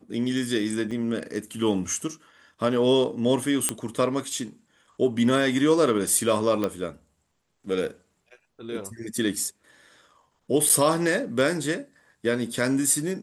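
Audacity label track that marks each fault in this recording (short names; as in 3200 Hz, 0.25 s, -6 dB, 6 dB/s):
0.910000	0.910000	gap 4.6 ms
3.690000	3.690000	pop -8 dBFS
6.640000	6.640000	pop -13 dBFS
10.690000	10.700000	gap 7.1 ms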